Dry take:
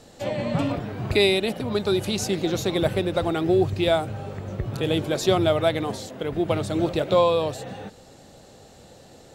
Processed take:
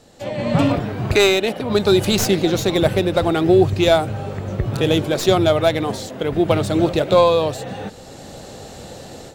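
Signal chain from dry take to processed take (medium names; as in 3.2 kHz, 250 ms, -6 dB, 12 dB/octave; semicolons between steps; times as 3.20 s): tracing distortion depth 0.062 ms; 1.15–1.70 s: tone controls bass -7 dB, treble -5 dB; level rider gain up to 13.5 dB; trim -1 dB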